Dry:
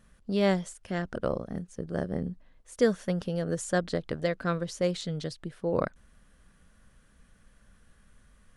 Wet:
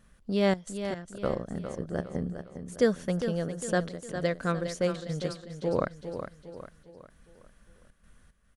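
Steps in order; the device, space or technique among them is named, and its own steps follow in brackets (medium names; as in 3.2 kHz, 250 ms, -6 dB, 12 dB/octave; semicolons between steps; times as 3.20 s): trance gate with a delay (trance gate "xxxx.xx..xx" 112 bpm -12 dB; feedback delay 406 ms, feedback 44%, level -9 dB)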